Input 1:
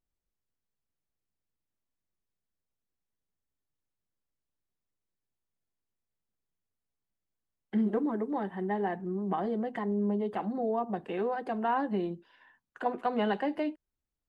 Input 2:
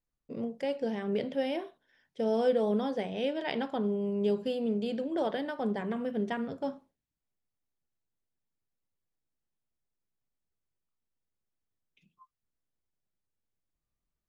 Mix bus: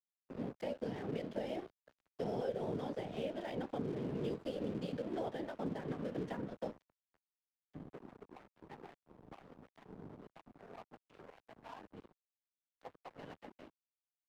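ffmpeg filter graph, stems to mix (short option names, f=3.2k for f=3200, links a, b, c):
-filter_complex "[0:a]equalizer=f=63:t=o:w=0.87:g=-9,volume=-11.5dB[a];[1:a]volume=2.5dB,asplit=2[b][c];[c]volume=-22dB,aecho=0:1:494|988|1482|1976:1|0.23|0.0529|0.0122[d];[a][b][d]amix=inputs=3:normalize=0,afftfilt=real='hypot(re,im)*cos(2*PI*random(0))':imag='hypot(re,im)*sin(2*PI*random(1))':win_size=512:overlap=0.75,aeval=exprs='sgn(val(0))*max(abs(val(0))-0.00335,0)':c=same,acrossover=split=120|860[e][f][g];[e]acompressor=threshold=-54dB:ratio=4[h];[f]acompressor=threshold=-37dB:ratio=4[i];[g]acompressor=threshold=-52dB:ratio=4[j];[h][i][j]amix=inputs=3:normalize=0"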